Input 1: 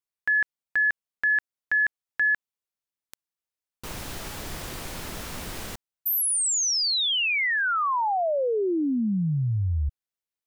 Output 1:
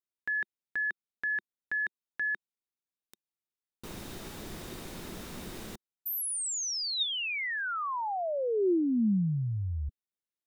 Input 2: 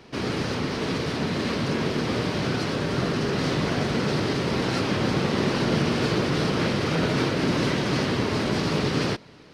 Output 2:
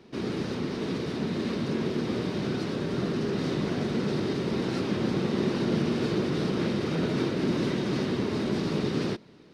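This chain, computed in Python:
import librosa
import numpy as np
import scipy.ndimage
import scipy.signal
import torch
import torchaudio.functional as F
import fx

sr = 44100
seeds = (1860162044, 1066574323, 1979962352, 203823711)

y = fx.small_body(x, sr, hz=(210.0, 350.0, 3700.0), ring_ms=25, db=8)
y = y * 10.0 ** (-9.0 / 20.0)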